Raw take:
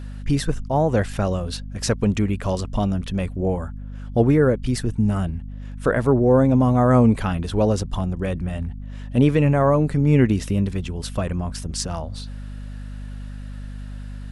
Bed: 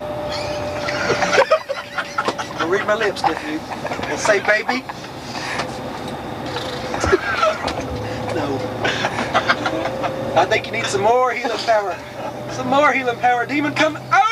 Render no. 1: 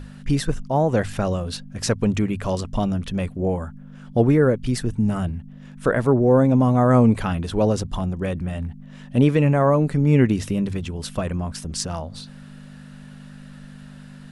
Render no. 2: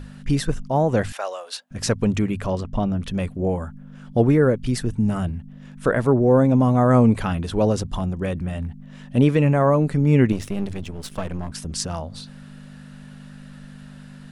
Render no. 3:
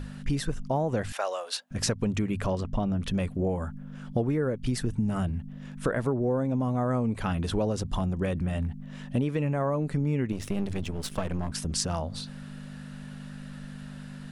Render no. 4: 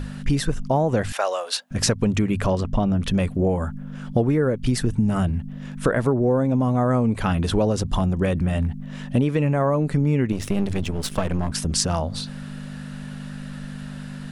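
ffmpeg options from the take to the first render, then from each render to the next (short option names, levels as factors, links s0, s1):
-af "bandreject=f=50:t=h:w=6,bandreject=f=100:t=h:w=6"
-filter_complex "[0:a]asettb=1/sr,asplit=3[s0][s1][s2];[s0]atrim=end=1.124[s3];[s1]atrim=start=1.12:end=1.71,asetpts=PTS-STARTPTS,afade=t=in:d=0.004:c=qsin,afade=t=out:st=0.586:d=0.004:c=qsin,highpass=f=580:w=0.5412,highpass=f=580:w=1.3066[s4];[s2]atrim=start=1.706[s5];[s3][s4]acrossfade=d=0.004:c1=hsin:c2=qsin[s6];[s6][s5]acrossfade=d=0.004:c1=qsin:c2=hsin,asettb=1/sr,asplit=3[s7][s8][s9];[s7]atrim=end=2.464[s10];[s8]atrim=start=2.46:end=3,asetpts=PTS-STARTPTS,afade=t=in:d=0.004:c=qsin,afade=t=out:st=0.536:d=0.004:c=qsin,lowpass=f=2000:p=1[s11];[s9]atrim=start=2.996[s12];[s10][s11]acrossfade=d=0.004:c1=hsin:c2=qsin[s13];[s13][s12]acrossfade=d=0.004:c1=qsin:c2=hsin,asettb=1/sr,asplit=3[s14][s15][s16];[s14]atrim=end=10.324[s17];[s15]atrim=start=10.32:end=11.52,asetpts=PTS-STARTPTS,afade=t=in:d=0.004:c=qsin,afade=t=out:st=1.196:d=0.004:c=qsin,aeval=exprs='if(lt(val(0),0),0.251*val(0),val(0))':c=same[s18];[s16]atrim=start=11.516[s19];[s17][s18]acrossfade=d=0.004:c1=hsin:c2=qsin[s20];[s20][s19]acrossfade=d=0.004:c1=qsin:c2=hsin"
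-af "acompressor=threshold=0.0631:ratio=6"
-af "volume=2.24"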